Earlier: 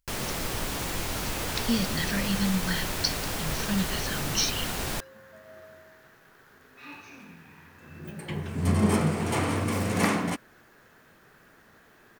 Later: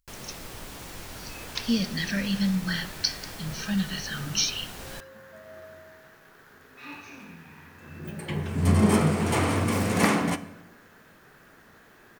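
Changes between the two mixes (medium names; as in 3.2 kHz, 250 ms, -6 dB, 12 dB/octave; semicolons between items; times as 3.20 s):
first sound -9.5 dB; reverb: on, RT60 1.2 s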